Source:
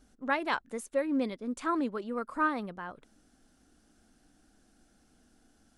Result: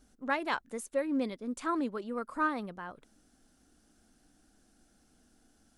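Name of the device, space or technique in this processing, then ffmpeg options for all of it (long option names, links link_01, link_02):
exciter from parts: -filter_complex "[0:a]asplit=2[link_01][link_02];[link_02]highpass=frequency=2500:poles=1,asoftclip=type=tanh:threshold=-32dB,highpass=frequency=4300:poles=1,volume=-6.5dB[link_03];[link_01][link_03]amix=inputs=2:normalize=0,volume=-1.5dB"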